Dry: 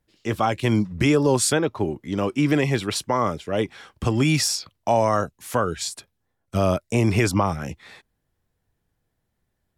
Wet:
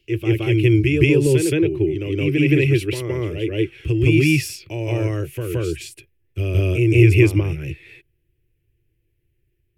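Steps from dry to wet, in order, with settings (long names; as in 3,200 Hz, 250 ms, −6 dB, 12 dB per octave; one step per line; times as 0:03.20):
drawn EQ curve 140 Hz 0 dB, 220 Hz −26 dB, 340 Hz +4 dB, 730 Hz −26 dB, 1,200 Hz −26 dB, 2,600 Hz +2 dB, 3,800 Hz −16 dB, 7,300 Hz −17 dB, 13,000 Hz −6 dB
backwards echo 170 ms −3.5 dB
level +7 dB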